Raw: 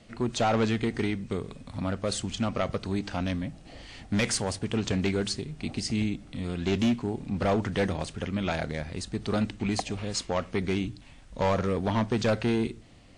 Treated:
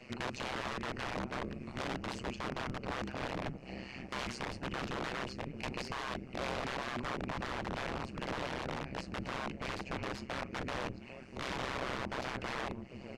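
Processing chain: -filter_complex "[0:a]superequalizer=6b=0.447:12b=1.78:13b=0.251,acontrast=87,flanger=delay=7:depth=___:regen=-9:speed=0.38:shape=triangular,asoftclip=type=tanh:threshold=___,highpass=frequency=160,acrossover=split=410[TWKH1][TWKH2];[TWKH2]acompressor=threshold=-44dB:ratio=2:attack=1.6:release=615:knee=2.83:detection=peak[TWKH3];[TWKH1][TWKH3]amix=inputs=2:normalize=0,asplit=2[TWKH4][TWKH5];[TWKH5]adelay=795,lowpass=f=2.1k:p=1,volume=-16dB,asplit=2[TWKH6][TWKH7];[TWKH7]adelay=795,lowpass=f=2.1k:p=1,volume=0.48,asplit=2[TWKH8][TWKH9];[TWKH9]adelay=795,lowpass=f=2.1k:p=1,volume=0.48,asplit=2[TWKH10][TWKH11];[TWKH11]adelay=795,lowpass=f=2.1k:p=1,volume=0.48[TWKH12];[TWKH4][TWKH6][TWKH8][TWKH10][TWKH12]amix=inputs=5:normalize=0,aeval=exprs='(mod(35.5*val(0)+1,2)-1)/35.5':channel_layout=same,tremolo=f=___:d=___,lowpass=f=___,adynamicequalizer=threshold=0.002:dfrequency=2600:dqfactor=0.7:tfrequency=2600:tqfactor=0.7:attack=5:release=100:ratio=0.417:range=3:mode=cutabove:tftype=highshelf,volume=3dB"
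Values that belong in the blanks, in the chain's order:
9.9, -22.5dB, 130, 0.974, 4.8k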